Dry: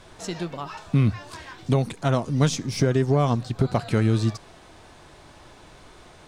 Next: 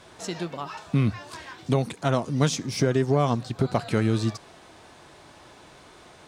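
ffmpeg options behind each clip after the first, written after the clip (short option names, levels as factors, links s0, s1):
-af "highpass=f=140:p=1"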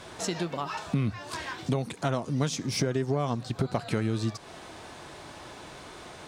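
-af "acompressor=threshold=0.02:ratio=2.5,volume=1.78"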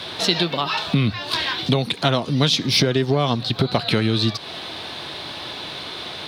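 -filter_complex "[0:a]highpass=79,highshelf=f=5300:t=q:w=3:g=-12,acrossover=split=630|1700[s0][s1][s2];[s2]crystalizer=i=3:c=0[s3];[s0][s1][s3]amix=inputs=3:normalize=0,volume=2.66"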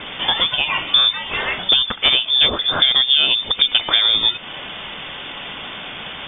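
-af "lowpass=f=3100:t=q:w=0.5098,lowpass=f=3100:t=q:w=0.6013,lowpass=f=3100:t=q:w=0.9,lowpass=f=3100:t=q:w=2.563,afreqshift=-3700,volume=1.58"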